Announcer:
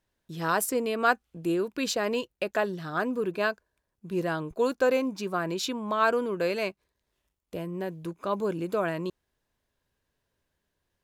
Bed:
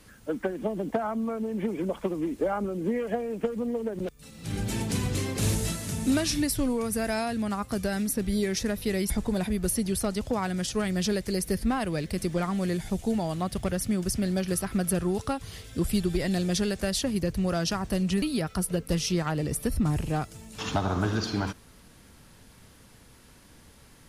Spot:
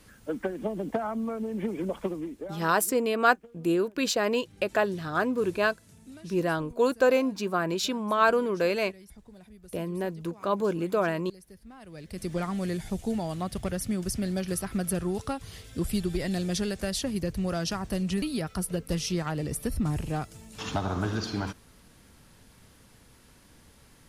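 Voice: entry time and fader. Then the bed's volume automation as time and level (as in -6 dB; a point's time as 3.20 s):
2.20 s, +2.0 dB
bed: 2.09 s -1.5 dB
2.86 s -23 dB
11.69 s -23 dB
12.32 s -2.5 dB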